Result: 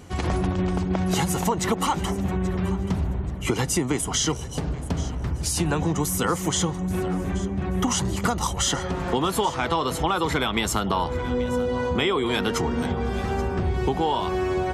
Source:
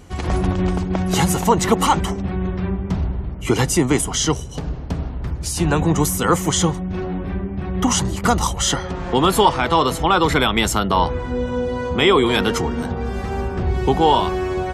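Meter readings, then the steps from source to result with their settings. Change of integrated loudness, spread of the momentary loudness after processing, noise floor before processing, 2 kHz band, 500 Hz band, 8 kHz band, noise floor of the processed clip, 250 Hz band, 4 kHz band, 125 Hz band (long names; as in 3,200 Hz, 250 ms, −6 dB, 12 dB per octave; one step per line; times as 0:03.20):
−5.5 dB, 4 LU, −28 dBFS, −5.5 dB, −6.0 dB, −4.0 dB, −31 dBFS, −5.0 dB, −5.5 dB, −4.5 dB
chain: high-pass filter 55 Hz
downward compressor, threshold −20 dBFS, peak gain reduction 11 dB
on a send: feedback echo with a high-pass in the loop 831 ms, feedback 29%, level −17 dB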